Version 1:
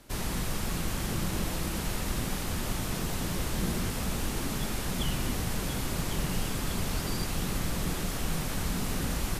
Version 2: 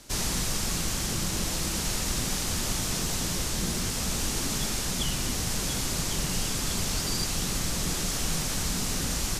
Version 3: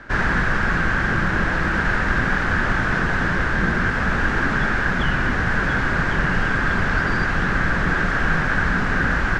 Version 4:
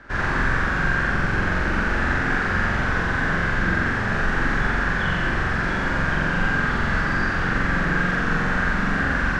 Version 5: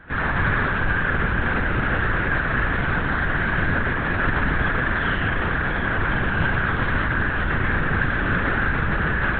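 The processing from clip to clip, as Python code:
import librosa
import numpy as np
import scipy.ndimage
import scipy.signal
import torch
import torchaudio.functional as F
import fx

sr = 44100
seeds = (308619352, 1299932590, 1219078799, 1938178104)

y1 = fx.rider(x, sr, range_db=10, speed_s=0.5)
y1 = fx.peak_eq(y1, sr, hz=6200.0, db=11.0, octaves=1.6)
y2 = fx.lowpass_res(y1, sr, hz=1600.0, q=6.9)
y2 = y2 * 10.0 ** (9.0 / 20.0)
y3 = fx.room_flutter(y2, sr, wall_m=7.6, rt60_s=1.2)
y3 = y3 * 10.0 ** (-5.5 / 20.0)
y4 = fx.lpc_vocoder(y3, sr, seeds[0], excitation='whisper', order=10)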